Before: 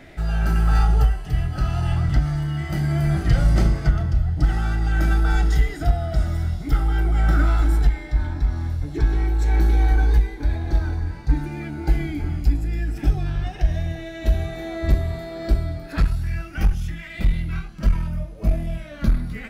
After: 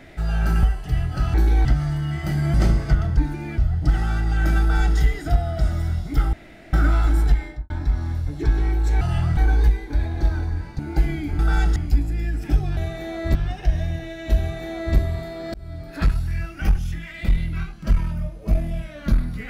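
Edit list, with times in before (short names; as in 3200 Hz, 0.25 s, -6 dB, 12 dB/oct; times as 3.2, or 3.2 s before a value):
0.63–1.04 cut
1.75–2.11 swap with 9.56–9.87
3–3.5 cut
5.16–5.53 copy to 12.3
6.88–7.28 room tone
7.99–8.25 studio fade out
11.29–11.7 move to 4.13
14.35–14.93 copy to 13.31
15.5–15.92 fade in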